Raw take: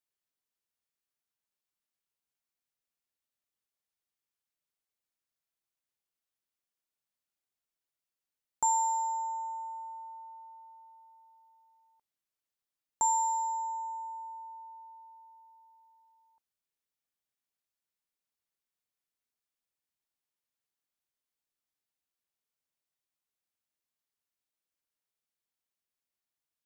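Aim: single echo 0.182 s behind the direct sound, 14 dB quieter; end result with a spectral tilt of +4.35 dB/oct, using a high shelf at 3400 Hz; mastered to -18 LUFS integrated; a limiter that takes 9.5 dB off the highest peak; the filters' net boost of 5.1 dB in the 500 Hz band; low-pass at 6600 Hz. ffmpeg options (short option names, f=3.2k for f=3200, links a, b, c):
-af "lowpass=6.6k,equalizer=f=500:t=o:g=6.5,highshelf=f=3.4k:g=4.5,alimiter=level_in=2.5dB:limit=-24dB:level=0:latency=1,volume=-2.5dB,aecho=1:1:182:0.2,volume=16.5dB"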